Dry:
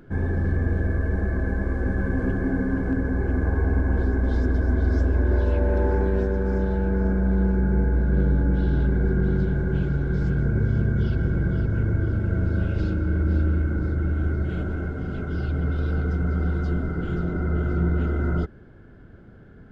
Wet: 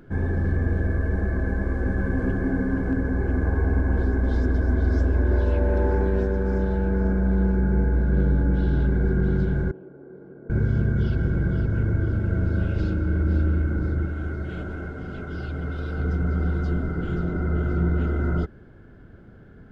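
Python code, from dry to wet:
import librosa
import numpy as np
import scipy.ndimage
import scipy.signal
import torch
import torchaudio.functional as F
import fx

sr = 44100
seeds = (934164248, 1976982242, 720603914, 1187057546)

y = fx.ladder_bandpass(x, sr, hz=490.0, resonance_pct=25, at=(9.71, 10.5))
y = fx.low_shelf(y, sr, hz=360.0, db=-6.0, at=(14.05, 16.0))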